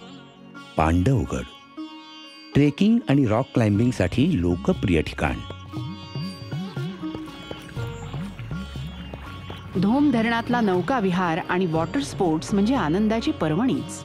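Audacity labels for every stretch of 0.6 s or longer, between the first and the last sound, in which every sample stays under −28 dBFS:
1.830000	2.550000	silence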